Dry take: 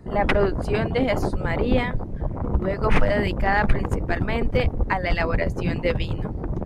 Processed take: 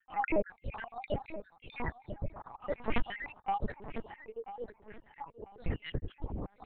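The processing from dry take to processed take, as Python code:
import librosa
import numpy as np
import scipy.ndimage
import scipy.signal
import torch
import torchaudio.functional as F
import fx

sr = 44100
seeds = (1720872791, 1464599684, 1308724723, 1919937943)

y = fx.spec_dropout(x, sr, seeds[0], share_pct=67)
y = fx.differentiator(y, sr, at=(1.16, 1.63))
y = fx.double_bandpass(y, sr, hz=620.0, octaves=0.94, at=(3.71, 5.59), fade=0.02)
y = fx.echo_feedback(y, sr, ms=992, feedback_pct=26, wet_db=-13.0)
y = fx.lpc_vocoder(y, sr, seeds[1], excitation='pitch_kept', order=8)
y = y * 10.0 ** (-7.5 / 20.0)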